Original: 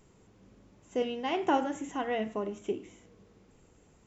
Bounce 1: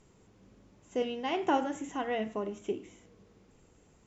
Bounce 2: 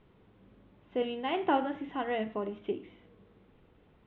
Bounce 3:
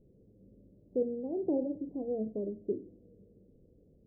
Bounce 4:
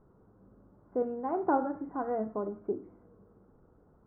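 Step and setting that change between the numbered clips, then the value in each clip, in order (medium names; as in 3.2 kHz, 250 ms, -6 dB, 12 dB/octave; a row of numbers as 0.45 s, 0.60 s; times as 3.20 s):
elliptic low-pass, frequency: 11 kHz, 3.6 kHz, 550 Hz, 1.4 kHz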